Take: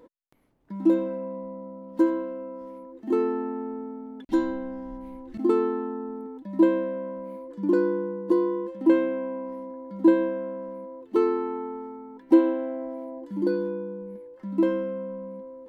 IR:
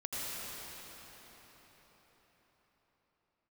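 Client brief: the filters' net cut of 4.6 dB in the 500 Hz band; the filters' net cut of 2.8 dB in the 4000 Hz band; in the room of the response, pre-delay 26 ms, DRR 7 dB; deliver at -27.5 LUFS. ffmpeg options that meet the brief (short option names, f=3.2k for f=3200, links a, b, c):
-filter_complex "[0:a]equalizer=f=500:t=o:g=-6.5,equalizer=f=4k:t=o:g=-3.5,asplit=2[a][b];[1:a]atrim=start_sample=2205,adelay=26[c];[b][c]afir=irnorm=-1:irlink=0,volume=-11.5dB[d];[a][d]amix=inputs=2:normalize=0,volume=2.5dB"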